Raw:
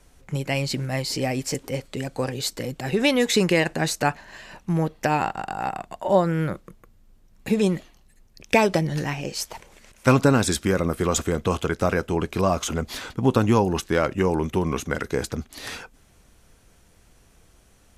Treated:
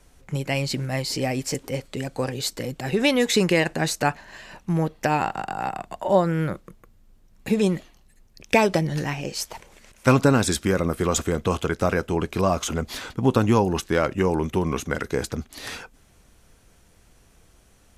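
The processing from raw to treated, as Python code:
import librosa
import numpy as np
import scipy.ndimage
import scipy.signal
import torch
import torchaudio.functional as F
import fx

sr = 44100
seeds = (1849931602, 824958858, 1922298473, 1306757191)

y = fx.band_squash(x, sr, depth_pct=40, at=(5.32, 6.04))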